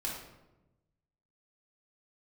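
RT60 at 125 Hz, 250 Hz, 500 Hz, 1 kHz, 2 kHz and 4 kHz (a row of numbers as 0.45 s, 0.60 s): 1.5 s, 1.3 s, 1.1 s, 0.90 s, 0.75 s, 0.60 s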